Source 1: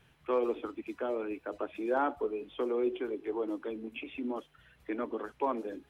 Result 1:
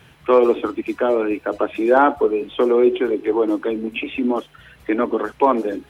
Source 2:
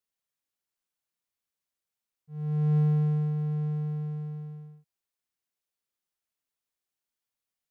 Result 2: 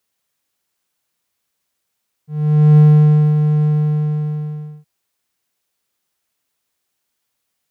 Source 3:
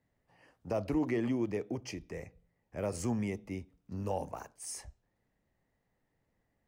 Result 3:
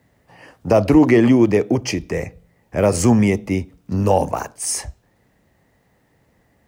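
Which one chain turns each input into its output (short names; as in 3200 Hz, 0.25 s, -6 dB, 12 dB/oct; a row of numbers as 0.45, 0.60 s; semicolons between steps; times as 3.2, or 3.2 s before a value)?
HPF 49 Hz; normalise peaks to -3 dBFS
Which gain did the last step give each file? +16.0, +15.0, +19.0 dB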